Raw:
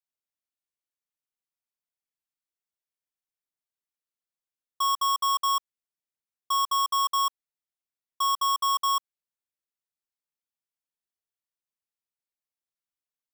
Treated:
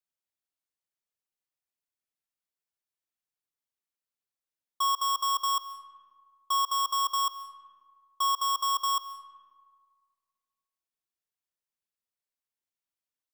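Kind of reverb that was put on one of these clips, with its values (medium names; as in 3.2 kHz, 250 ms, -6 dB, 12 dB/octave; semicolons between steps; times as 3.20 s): algorithmic reverb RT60 1.8 s, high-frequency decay 0.5×, pre-delay 100 ms, DRR 13.5 dB; trim -1.5 dB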